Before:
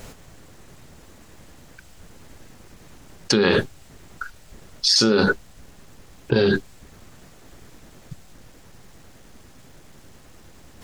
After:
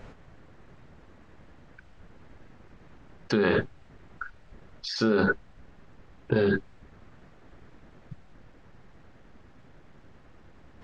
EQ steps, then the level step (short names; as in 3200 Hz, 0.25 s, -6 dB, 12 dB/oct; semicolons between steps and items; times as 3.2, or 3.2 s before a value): tape spacing loss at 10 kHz 27 dB; bell 1600 Hz +4 dB 1.5 oct; -4.5 dB